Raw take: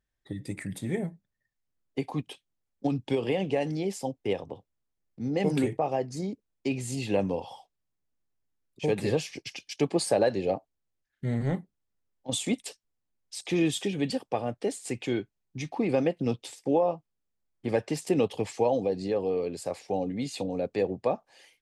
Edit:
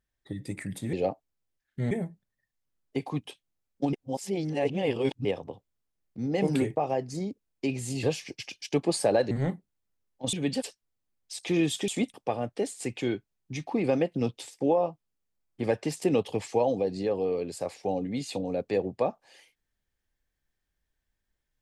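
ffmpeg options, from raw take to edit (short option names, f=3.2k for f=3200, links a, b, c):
-filter_complex "[0:a]asplit=11[a][b][c][d][e][f][g][h][i][j][k];[a]atrim=end=0.932[l];[b]atrim=start=10.378:end=11.362[m];[c]atrim=start=0.928:end=2.952[n];[d]atrim=start=2.948:end=4.272,asetpts=PTS-STARTPTS,areverse[o];[e]atrim=start=4.268:end=7.052[p];[f]atrim=start=9.098:end=10.382[q];[g]atrim=start=11.358:end=12.382[r];[h]atrim=start=13.898:end=14.192[s];[i]atrim=start=12.638:end=13.902[t];[j]atrim=start=12.378:end=12.642[u];[k]atrim=start=14.188[v];[l][m]acrossfade=d=0.004:c1=hsin:c2=hsin[w];[w][n]acrossfade=d=0.004:c1=hsin:c2=hsin[x];[x][o]acrossfade=d=0.004:c1=hsin:c2=hsin[y];[y][p]acrossfade=d=0.004:c1=hsin:c2=hsin[z];[z][q]acrossfade=d=0.004:c1=hsin:c2=hsin[aa];[aa][r]acrossfade=d=0.004:c1=hsin:c2=hsin[ab];[ab][s]acrossfade=d=0.004:c1=hsin:c2=hsin[ac];[ac][t]acrossfade=d=0.004:c1=hsin:c2=hsin[ad];[ad][u]acrossfade=d=0.004:c1=hsin:c2=hsin[ae];[ae][v]acrossfade=d=0.004:c1=hsin:c2=hsin"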